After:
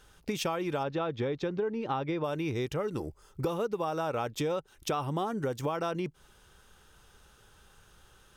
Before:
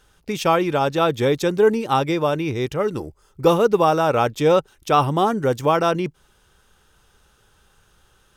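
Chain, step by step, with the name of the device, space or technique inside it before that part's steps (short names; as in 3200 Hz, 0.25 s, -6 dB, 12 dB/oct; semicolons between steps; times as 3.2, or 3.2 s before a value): 0.83–2.24 air absorption 210 m; serial compression, leveller first (compressor 2:1, threshold -20 dBFS, peak gain reduction 6 dB; compressor 4:1, threshold -29 dBFS, peak gain reduction 12 dB); gain -1 dB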